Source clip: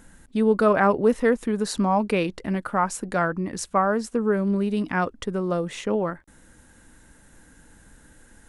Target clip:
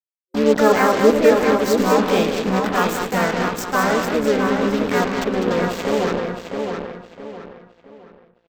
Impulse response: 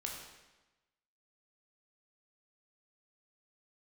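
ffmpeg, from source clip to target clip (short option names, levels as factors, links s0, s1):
-filter_complex "[0:a]asplit=2[s0][s1];[s1]asetrate=58866,aresample=44100,atempo=0.749154,volume=0.794[s2];[s0][s2]amix=inputs=2:normalize=0,bandreject=f=99.09:t=h:w=4,bandreject=f=198.18:t=h:w=4,bandreject=f=297.27:t=h:w=4,bandreject=f=396.36:t=h:w=4,bandreject=f=495.45:t=h:w=4,bandreject=f=594.54:t=h:w=4,bandreject=f=693.63:t=h:w=4,bandreject=f=792.72:t=h:w=4,bandreject=f=891.81:t=h:w=4,bandreject=f=990.9:t=h:w=4,bandreject=f=1089.99:t=h:w=4,bandreject=f=1189.08:t=h:w=4,bandreject=f=1288.17:t=h:w=4,bandreject=f=1387.26:t=h:w=4,bandreject=f=1486.35:t=h:w=4,bandreject=f=1585.44:t=h:w=4,bandreject=f=1684.53:t=h:w=4,bandreject=f=1783.62:t=h:w=4,bandreject=f=1882.71:t=h:w=4,bandreject=f=1981.8:t=h:w=4,bandreject=f=2080.89:t=h:w=4,bandreject=f=2179.98:t=h:w=4,bandreject=f=2279.07:t=h:w=4,bandreject=f=2378.16:t=h:w=4,bandreject=f=2477.25:t=h:w=4,bandreject=f=2576.34:t=h:w=4,bandreject=f=2675.43:t=h:w=4,bandreject=f=2774.52:t=h:w=4,bandreject=f=2873.61:t=h:w=4,bandreject=f=2972.7:t=h:w=4,bandreject=f=3071.79:t=h:w=4,bandreject=f=3170.88:t=h:w=4,bandreject=f=3269.97:t=h:w=4,bandreject=f=3369.06:t=h:w=4,bandreject=f=3468.15:t=h:w=4,bandreject=f=3567.24:t=h:w=4,bandreject=f=3666.33:t=h:w=4,bandreject=f=3765.42:t=h:w=4,bandreject=f=3864.51:t=h:w=4,asplit=2[s3][s4];[s4]aecho=0:1:110|200:0.237|0.447[s5];[s3][s5]amix=inputs=2:normalize=0,acrusher=bits=3:mix=0:aa=0.5,superequalizer=7b=1.58:16b=0.282,asplit=2[s6][s7];[s7]adelay=664,lowpass=f=4100:p=1,volume=0.562,asplit=2[s8][s9];[s9]adelay=664,lowpass=f=4100:p=1,volume=0.35,asplit=2[s10][s11];[s11]adelay=664,lowpass=f=4100:p=1,volume=0.35,asplit=2[s12][s13];[s13]adelay=664,lowpass=f=4100:p=1,volume=0.35[s14];[s8][s10][s12][s14]amix=inputs=4:normalize=0[s15];[s6][s15]amix=inputs=2:normalize=0"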